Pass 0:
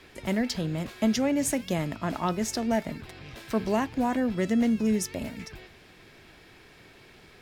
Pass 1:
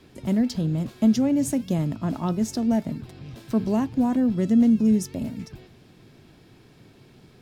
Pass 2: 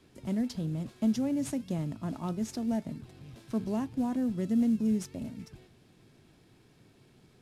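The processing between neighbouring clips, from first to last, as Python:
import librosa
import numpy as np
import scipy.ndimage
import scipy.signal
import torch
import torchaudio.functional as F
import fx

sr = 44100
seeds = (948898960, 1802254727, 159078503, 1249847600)

y1 = fx.graphic_eq_10(x, sr, hz=(125, 250, 2000), db=(10, 7, -7))
y1 = F.gain(torch.from_numpy(y1), -2.5).numpy()
y2 = fx.cvsd(y1, sr, bps=64000)
y2 = F.gain(torch.from_numpy(y2), -8.5).numpy()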